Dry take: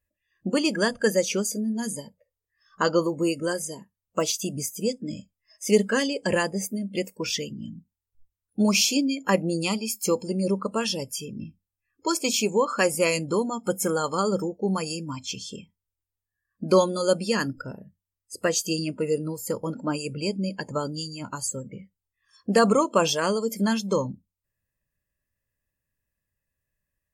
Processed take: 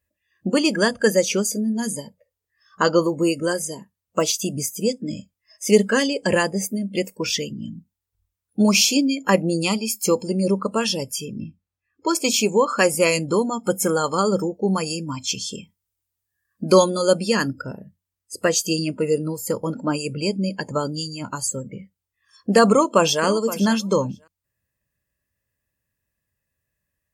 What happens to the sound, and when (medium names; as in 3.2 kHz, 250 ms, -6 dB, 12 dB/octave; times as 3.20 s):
11.40–12.15 s: low-pass 3.1 kHz 6 dB/octave
15.20–16.90 s: treble shelf 4.2 kHz +6.5 dB
22.70–23.23 s: echo throw 520 ms, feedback 10%, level -14.5 dB
whole clip: high-pass 49 Hz; trim +4.5 dB